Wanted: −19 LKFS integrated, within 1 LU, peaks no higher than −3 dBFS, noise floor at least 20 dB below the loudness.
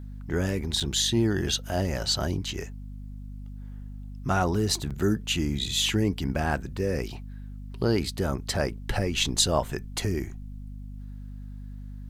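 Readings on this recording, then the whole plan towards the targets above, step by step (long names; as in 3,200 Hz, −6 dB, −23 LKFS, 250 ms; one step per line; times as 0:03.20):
number of dropouts 2; longest dropout 6.6 ms; mains hum 50 Hz; hum harmonics up to 250 Hz; level of the hum −37 dBFS; integrated loudness −27.0 LKFS; sample peak −8.0 dBFS; target loudness −19.0 LKFS
→ repair the gap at 0:00.80/0:04.90, 6.6 ms
hum removal 50 Hz, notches 5
level +8 dB
brickwall limiter −3 dBFS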